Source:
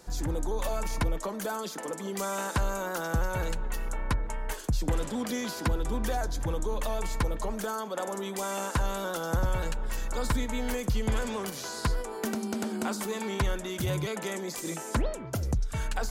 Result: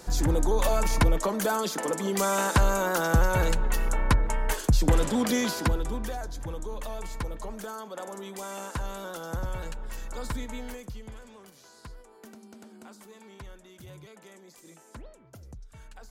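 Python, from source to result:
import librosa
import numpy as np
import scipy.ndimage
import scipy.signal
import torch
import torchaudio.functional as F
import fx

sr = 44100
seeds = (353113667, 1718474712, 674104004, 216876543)

y = fx.gain(x, sr, db=fx.line((5.43, 6.5), (6.17, -5.0), (10.54, -5.0), (11.19, -17.0)))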